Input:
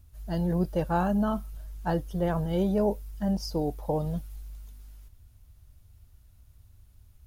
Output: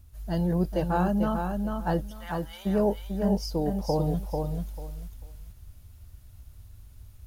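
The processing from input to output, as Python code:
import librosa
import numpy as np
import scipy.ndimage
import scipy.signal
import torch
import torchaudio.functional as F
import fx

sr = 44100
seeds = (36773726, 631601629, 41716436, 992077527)

p1 = fx.highpass(x, sr, hz=1100.0, slope=24, at=(2.07, 2.65), fade=0.02)
p2 = p1 + fx.echo_feedback(p1, sr, ms=443, feedback_pct=17, wet_db=-5.5, dry=0)
y = fx.rider(p2, sr, range_db=10, speed_s=2.0)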